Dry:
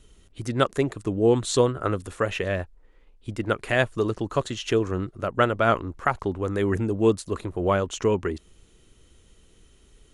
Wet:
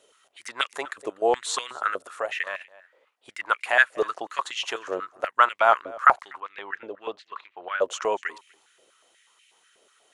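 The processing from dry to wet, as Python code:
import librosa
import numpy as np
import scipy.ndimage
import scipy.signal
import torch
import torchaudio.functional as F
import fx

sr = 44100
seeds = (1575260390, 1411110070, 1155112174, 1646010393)

p1 = fx.ladder_lowpass(x, sr, hz=4200.0, resonance_pct=35, at=(6.38, 7.8), fade=0.02)
p2 = p1 + fx.echo_single(p1, sr, ms=244, db=-23.5, dry=0)
p3 = fx.level_steps(p2, sr, step_db=9, at=(1.98, 2.61))
p4 = fx.filter_held_highpass(p3, sr, hz=8.2, low_hz=570.0, high_hz=2300.0)
y = F.gain(torch.from_numpy(p4), -1.0).numpy()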